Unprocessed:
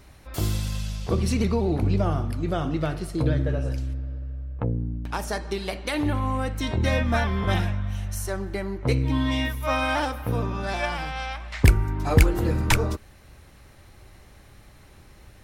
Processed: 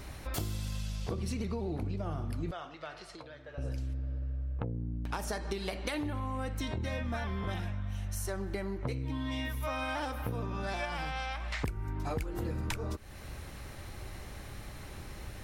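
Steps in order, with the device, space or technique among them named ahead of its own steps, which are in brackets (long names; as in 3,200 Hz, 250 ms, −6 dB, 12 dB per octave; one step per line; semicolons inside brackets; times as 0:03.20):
serial compression, leveller first (downward compressor 3 to 1, threshold −25 dBFS, peak gain reduction 11.5 dB; downward compressor 4 to 1, threshold −40 dBFS, peak gain reduction 16.5 dB)
0:02.51–0:03.58: three-way crossover with the lows and the highs turned down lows −21 dB, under 570 Hz, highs −21 dB, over 7,000 Hz
level +5.5 dB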